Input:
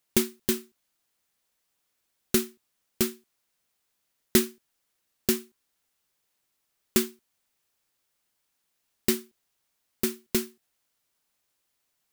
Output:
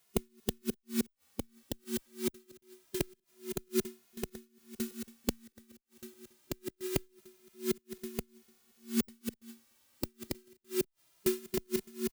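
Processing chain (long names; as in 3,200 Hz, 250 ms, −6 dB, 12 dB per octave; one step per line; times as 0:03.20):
feedback delay that plays each chunk backwards 614 ms, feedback 54%, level −3 dB
harmonic and percussive parts rebalanced harmonic +7 dB
gate with flip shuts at −18 dBFS, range −38 dB
barber-pole flanger 2.4 ms +0.25 Hz
level +5 dB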